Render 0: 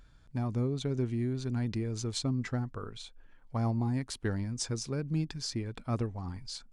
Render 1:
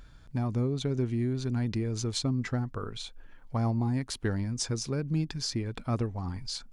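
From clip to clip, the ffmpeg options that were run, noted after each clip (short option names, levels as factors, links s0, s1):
-filter_complex "[0:a]equalizer=f=8100:t=o:w=0.23:g=-3,asplit=2[s0][s1];[s1]acompressor=threshold=0.01:ratio=6,volume=1.12[s2];[s0][s2]amix=inputs=2:normalize=0"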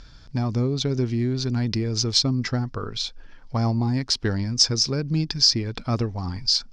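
-af "lowpass=f=5200:t=q:w=4.7,volume=1.88"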